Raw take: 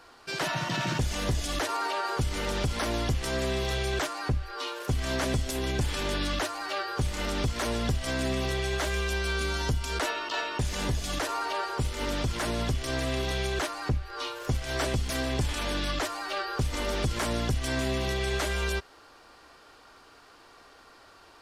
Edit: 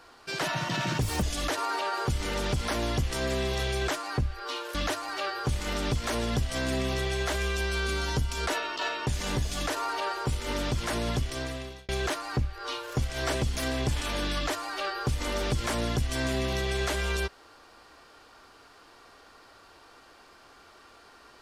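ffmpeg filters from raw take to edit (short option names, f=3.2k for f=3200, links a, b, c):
-filter_complex "[0:a]asplit=5[a][b][c][d][e];[a]atrim=end=1.024[f];[b]atrim=start=1.02:end=1.34,asetpts=PTS-STARTPTS,asetrate=68355,aresample=44100[g];[c]atrim=start=1.336:end=4.862[h];[d]atrim=start=6.268:end=13.41,asetpts=PTS-STARTPTS,afade=t=out:st=6.442:d=0.7[i];[e]atrim=start=13.41,asetpts=PTS-STARTPTS,afade=t=in:d=0.004:c=hsin[j];[f][g]acrossfade=d=0.004:c1=hsin:c2=hsin[k];[k][h]acrossfade=d=0.004:c1=hsin:c2=hsin[l];[i][j]concat=n=2:v=0:a=1[m];[l][m]acrossfade=d=0.004:c1=hsin:c2=hsin"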